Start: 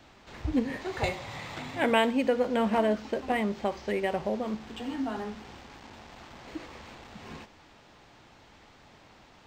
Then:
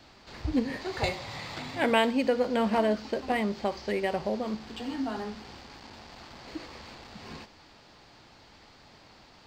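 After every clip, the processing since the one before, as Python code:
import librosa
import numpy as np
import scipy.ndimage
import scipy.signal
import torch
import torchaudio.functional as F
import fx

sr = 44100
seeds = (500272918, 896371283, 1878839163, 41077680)

y = fx.peak_eq(x, sr, hz=4600.0, db=9.5, octaves=0.35)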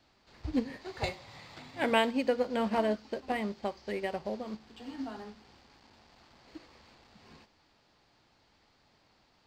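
y = fx.upward_expand(x, sr, threshold_db=-42.0, expansion=1.5)
y = y * librosa.db_to_amplitude(-2.0)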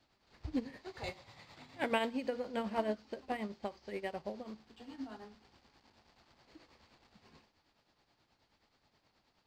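y = fx.tremolo_shape(x, sr, shape='triangle', hz=9.4, depth_pct=65)
y = y * librosa.db_to_amplitude(-3.5)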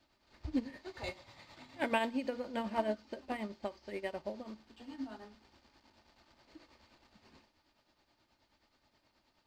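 y = x + 0.36 * np.pad(x, (int(3.3 * sr / 1000.0), 0))[:len(x)]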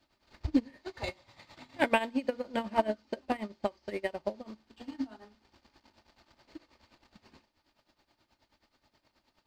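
y = fx.transient(x, sr, attack_db=9, sustain_db=-5)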